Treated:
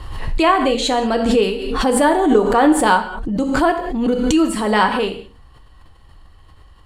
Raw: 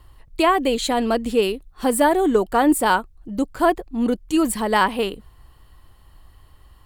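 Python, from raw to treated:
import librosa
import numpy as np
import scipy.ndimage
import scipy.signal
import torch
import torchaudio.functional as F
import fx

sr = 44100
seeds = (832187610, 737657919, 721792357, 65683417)

y = scipy.signal.sosfilt(scipy.signal.butter(2, 7100.0, 'lowpass', fs=sr, output='sos'), x)
y = fx.rev_gated(y, sr, seeds[0], gate_ms=220, shape='falling', drr_db=5.0)
y = fx.pre_swell(y, sr, db_per_s=42.0)
y = y * librosa.db_to_amplitude(1.5)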